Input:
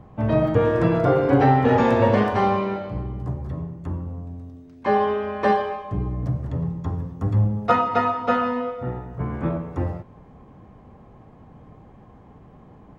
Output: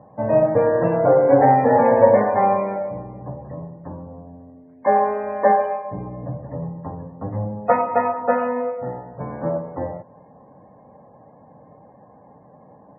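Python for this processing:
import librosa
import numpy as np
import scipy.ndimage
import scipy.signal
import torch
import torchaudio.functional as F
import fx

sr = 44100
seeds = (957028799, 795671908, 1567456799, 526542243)

y = fx.self_delay(x, sr, depth_ms=0.062)
y = fx.cabinet(y, sr, low_hz=180.0, low_slope=12, high_hz=2200.0, hz=(220.0, 370.0, 560.0, 850.0, 1300.0), db=(-3, -9, 9, 4, -8))
y = fx.spec_topn(y, sr, count=64)
y = F.gain(torch.from_numpy(y), 1.5).numpy()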